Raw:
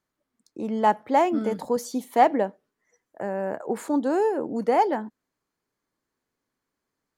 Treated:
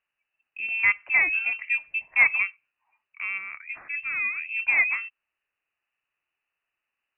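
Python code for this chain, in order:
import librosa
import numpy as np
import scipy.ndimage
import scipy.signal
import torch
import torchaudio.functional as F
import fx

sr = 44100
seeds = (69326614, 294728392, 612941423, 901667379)

y = fx.highpass(x, sr, hz=fx.line((3.37, 1300.0), (4.48, 460.0)), slope=6, at=(3.37, 4.48), fade=0.02)
y = fx.freq_invert(y, sr, carrier_hz=2900)
y = F.gain(torch.from_numpy(y), -1.5).numpy()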